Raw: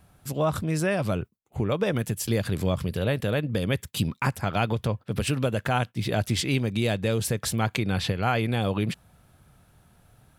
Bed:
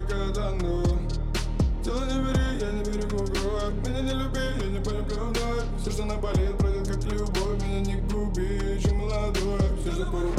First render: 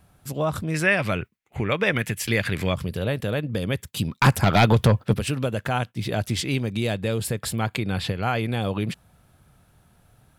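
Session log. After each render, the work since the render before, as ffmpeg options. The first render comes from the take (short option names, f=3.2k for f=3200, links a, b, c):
-filter_complex "[0:a]asettb=1/sr,asplit=3[a][b][c];[a]atrim=end=0.744[d];[b]atrim=start=0.74:end=2.74,asetpts=PTS-STARTPTS,afade=t=in:d=0.004:c=qsin,afade=t=out:st=1.996:d=0.004:c=qsin,equalizer=f=2.1k:t=o:w=1.2:g=14.5[e];[c]atrim=start=2.736[f];[d][e]acrossfade=d=0.004:c1=hsin:c2=qsin[g];[g][f]acrossfade=d=0.004:c1=qsin:c2=hsin,asettb=1/sr,asplit=3[h][i][j];[h]atrim=end=4.214[k];[i]atrim=start=4.21:end=5.14,asetpts=PTS-STARTPTS,afade=t=in:d=0.004:c=qsin,afade=t=out:st=0.926:d=0.004:c=qsin,aeval=exprs='0.335*sin(PI/2*2.24*val(0)/0.335)':c=same[l];[j]atrim=start=5.136[m];[k][l]acrossfade=d=0.004:c1=hsin:c2=qsin[n];[n][m]acrossfade=d=0.004:c1=qsin:c2=hsin,asettb=1/sr,asplit=3[o][p][q];[o]atrim=end=6.944[r];[p]atrim=start=6.94:end=8.06,asetpts=PTS-STARTPTS,afade=t=in:d=0.004:c=qsin,afade=t=out:st=1.116:d=0.004:c=qsin,bandreject=f=6k:w=5.3[s];[q]atrim=start=8.056[t];[r][s]acrossfade=d=0.004:c1=hsin:c2=qsin[u];[u][t]acrossfade=d=0.004:c1=qsin:c2=hsin"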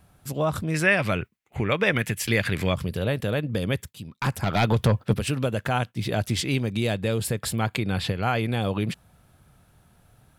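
-filter_complex "[0:a]asplit=2[a][b];[a]atrim=end=3.93,asetpts=PTS-STARTPTS,afade=t=out:st=3.926:d=0.004:c=hsin:silence=0.16788[c];[b]atrim=start=3.93,asetpts=PTS-STARTPTS,afade=t=in:d=1.44:silence=0.16788[d];[c][d]concat=n=2:v=0:a=1"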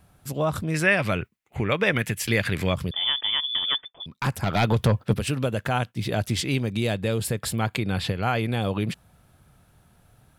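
-filter_complex "[0:a]asettb=1/sr,asplit=3[a][b][c];[a]atrim=end=2.914[d];[b]atrim=start=2.91:end=4.06,asetpts=PTS-STARTPTS,afade=t=in:d=0.004:c=qsin,afade=t=out:st=1.146:d=0.004:c=qsin,lowpass=f=3.1k:t=q:w=0.5098,lowpass=f=3.1k:t=q:w=0.6013,lowpass=f=3.1k:t=q:w=0.9,lowpass=f=3.1k:t=q:w=2.563,afreqshift=-3600[e];[c]atrim=start=4.056[f];[d][e]acrossfade=d=0.004:c1=hsin:c2=qsin[g];[g][f]acrossfade=d=0.004:c1=qsin:c2=hsin"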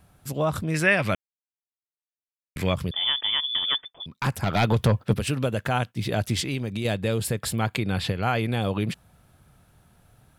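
-filter_complex "[0:a]asettb=1/sr,asplit=3[a][b][c];[a]atrim=end=6.434[d];[b]atrim=start=6.43:end=6.85,asetpts=PTS-STARTPTS,afade=t=in:d=0.004:c=qsin,afade=t=out:st=0.416:d=0.004:c=qsin,acompressor=threshold=-27dB:ratio=2:attack=3.2:release=140:knee=1:detection=peak[e];[c]atrim=start=6.846[f];[d][e]acrossfade=d=0.004:c1=hsin:c2=qsin[g];[g][f]acrossfade=d=0.004:c1=qsin:c2=hsin,asplit=3[h][i][j];[h]atrim=end=1.15,asetpts=PTS-STARTPTS,afade=t=out:st=1.146:d=0.004:c=hsin[k];[i]atrim=start=1.15:end=2.56,asetpts=PTS-STARTPTS,volume=0[l];[j]atrim=start=2.56,asetpts=PTS-STARTPTS,afade=t=in:d=0.004:c=hsin[m];[k][l][m]concat=n=3:v=0:a=1"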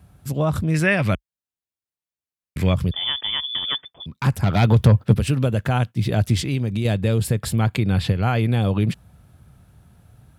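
-af "highpass=f=44:w=0.5412,highpass=f=44:w=1.3066,lowshelf=f=230:g=10.5"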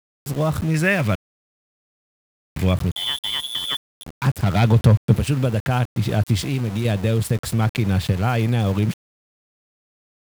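-af "aeval=exprs='val(0)*gte(abs(val(0)),0.0335)':c=same"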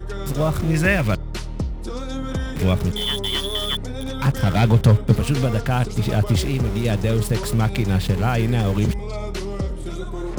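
-filter_complex "[1:a]volume=-1.5dB[a];[0:a][a]amix=inputs=2:normalize=0"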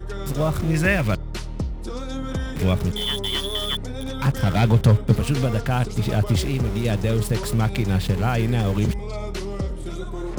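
-af "volume=-1.5dB"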